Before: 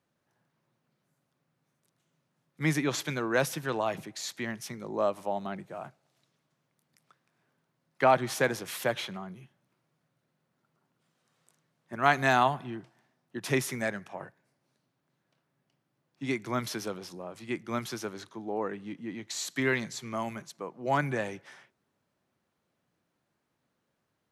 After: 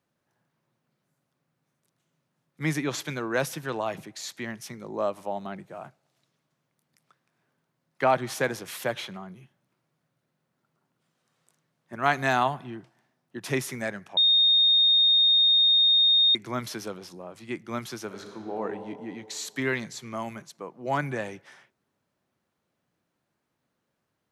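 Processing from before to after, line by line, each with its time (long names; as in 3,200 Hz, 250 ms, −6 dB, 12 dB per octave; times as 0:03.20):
0:14.17–0:16.35: beep over 3,690 Hz −16.5 dBFS
0:18.05–0:18.62: thrown reverb, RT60 2.3 s, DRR 3 dB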